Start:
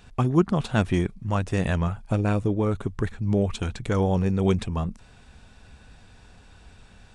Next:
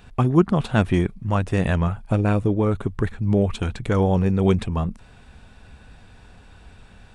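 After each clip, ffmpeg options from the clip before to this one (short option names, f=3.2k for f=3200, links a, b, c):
-af "equalizer=f=6.2k:w=1:g=-6,volume=3.5dB"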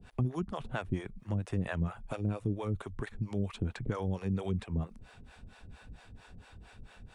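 -filter_complex "[0:a]acrossover=split=120|2500[a][b][c];[a]acompressor=threshold=-33dB:ratio=4[d];[b]acompressor=threshold=-28dB:ratio=4[e];[c]acompressor=threshold=-50dB:ratio=4[f];[d][e][f]amix=inputs=3:normalize=0,acrossover=split=430[g][h];[g]aeval=exprs='val(0)*(1-1/2+1/2*cos(2*PI*4.4*n/s))':c=same[i];[h]aeval=exprs='val(0)*(1-1/2-1/2*cos(2*PI*4.4*n/s))':c=same[j];[i][j]amix=inputs=2:normalize=0,volume=-1dB"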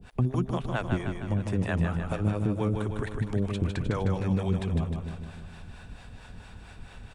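-af "aecho=1:1:154|308|462|616|770|924|1078|1232:0.562|0.332|0.196|0.115|0.0681|0.0402|0.0237|0.014,volume=5dB"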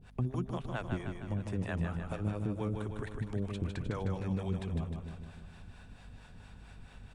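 -af "aeval=exprs='val(0)+0.00398*(sin(2*PI*50*n/s)+sin(2*PI*2*50*n/s)/2+sin(2*PI*3*50*n/s)/3+sin(2*PI*4*50*n/s)/4+sin(2*PI*5*50*n/s)/5)':c=same,volume=-7.5dB"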